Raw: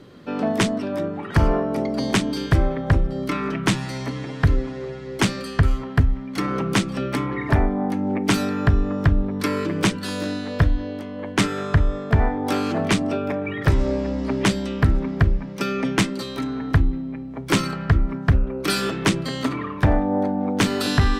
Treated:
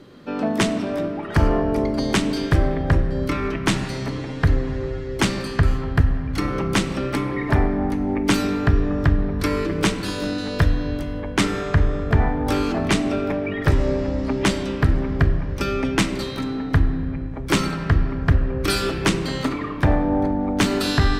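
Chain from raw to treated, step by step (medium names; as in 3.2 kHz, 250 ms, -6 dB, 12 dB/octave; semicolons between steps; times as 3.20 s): 10.38–11.20 s: treble shelf 3.9 kHz +8.5 dB; on a send: reverberation RT60 2.8 s, pre-delay 3 ms, DRR 8 dB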